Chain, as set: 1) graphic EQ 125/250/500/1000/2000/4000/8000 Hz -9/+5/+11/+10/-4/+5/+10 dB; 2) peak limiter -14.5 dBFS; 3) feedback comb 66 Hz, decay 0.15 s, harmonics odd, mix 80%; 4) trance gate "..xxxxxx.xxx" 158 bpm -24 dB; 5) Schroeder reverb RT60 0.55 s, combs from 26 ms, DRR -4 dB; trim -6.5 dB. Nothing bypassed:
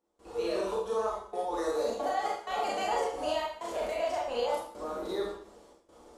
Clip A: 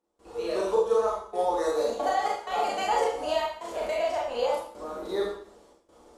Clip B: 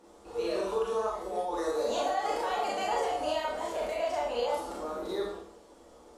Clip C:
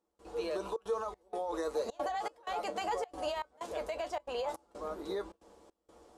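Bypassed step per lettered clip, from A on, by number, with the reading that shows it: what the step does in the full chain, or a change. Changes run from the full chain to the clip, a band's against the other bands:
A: 2, mean gain reduction 2.0 dB; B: 4, momentary loudness spread change +2 LU; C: 5, loudness change -5.0 LU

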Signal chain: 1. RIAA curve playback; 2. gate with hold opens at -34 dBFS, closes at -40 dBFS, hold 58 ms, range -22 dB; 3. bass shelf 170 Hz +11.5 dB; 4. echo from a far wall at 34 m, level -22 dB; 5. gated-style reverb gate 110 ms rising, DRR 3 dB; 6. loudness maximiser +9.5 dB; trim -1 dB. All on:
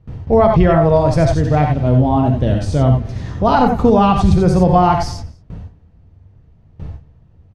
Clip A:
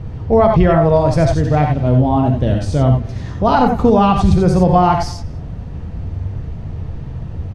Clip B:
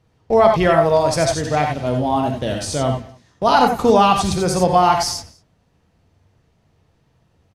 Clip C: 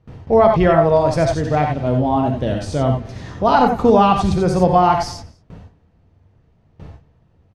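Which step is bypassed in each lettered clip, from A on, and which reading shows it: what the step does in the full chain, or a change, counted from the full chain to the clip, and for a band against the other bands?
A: 2, momentary loudness spread change +9 LU; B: 1, 125 Hz band -12.0 dB; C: 3, 125 Hz band -6.5 dB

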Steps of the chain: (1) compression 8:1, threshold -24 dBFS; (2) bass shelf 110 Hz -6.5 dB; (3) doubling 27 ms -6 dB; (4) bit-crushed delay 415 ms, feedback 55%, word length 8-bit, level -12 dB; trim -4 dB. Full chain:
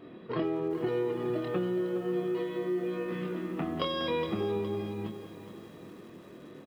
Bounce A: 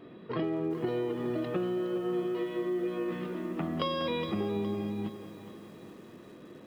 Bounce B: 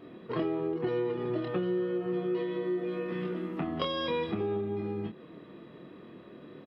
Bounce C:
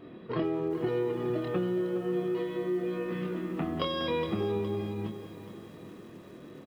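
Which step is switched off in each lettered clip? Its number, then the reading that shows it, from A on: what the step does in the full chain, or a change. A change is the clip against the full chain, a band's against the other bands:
3, 250 Hz band +2.0 dB; 4, momentary loudness spread change +1 LU; 2, 125 Hz band +2.5 dB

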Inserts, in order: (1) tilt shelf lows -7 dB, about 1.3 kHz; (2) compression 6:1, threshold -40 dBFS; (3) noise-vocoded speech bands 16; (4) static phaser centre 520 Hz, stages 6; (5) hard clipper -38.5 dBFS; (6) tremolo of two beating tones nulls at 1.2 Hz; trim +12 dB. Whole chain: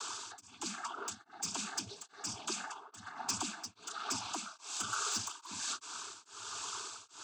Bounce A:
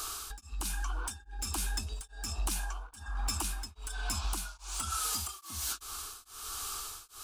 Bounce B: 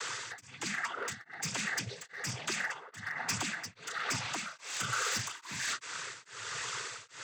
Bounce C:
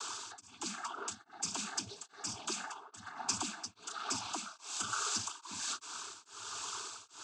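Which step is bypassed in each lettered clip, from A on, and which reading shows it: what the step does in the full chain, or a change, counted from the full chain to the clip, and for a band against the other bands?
3, crest factor change -5.5 dB; 4, 125 Hz band +8.5 dB; 5, distortion -19 dB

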